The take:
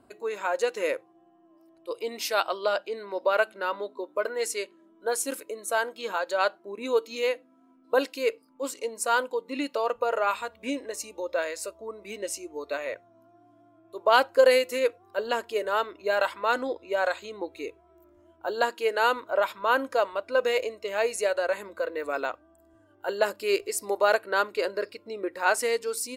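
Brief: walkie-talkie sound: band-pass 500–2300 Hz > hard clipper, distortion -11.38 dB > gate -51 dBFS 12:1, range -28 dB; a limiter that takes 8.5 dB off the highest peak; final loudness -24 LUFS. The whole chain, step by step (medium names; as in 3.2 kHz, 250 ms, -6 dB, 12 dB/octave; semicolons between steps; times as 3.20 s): peak limiter -16 dBFS; band-pass 500–2300 Hz; hard clipper -25 dBFS; gate -51 dBFS 12:1, range -28 dB; trim +9.5 dB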